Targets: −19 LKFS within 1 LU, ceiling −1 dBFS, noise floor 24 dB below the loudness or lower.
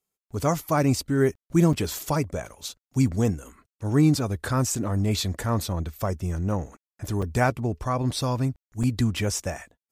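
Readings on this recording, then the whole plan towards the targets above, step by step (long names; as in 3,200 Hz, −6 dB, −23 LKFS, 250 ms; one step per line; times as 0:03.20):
number of dropouts 3; longest dropout 5.3 ms; integrated loudness −25.5 LKFS; sample peak −8.5 dBFS; target loudness −19.0 LKFS
→ repair the gap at 0:01.73/0:07.22/0:08.83, 5.3 ms
level +6.5 dB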